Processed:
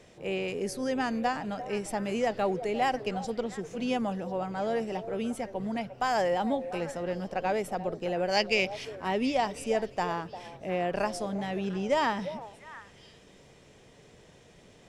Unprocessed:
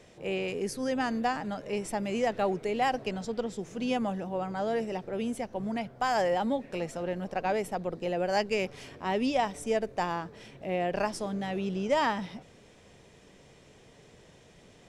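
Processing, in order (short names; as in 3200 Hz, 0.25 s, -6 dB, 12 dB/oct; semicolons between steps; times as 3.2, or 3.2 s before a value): 8.31–8.85 band shelf 3500 Hz +8 dB; delay with a stepping band-pass 0.35 s, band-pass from 590 Hz, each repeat 1.4 oct, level -10 dB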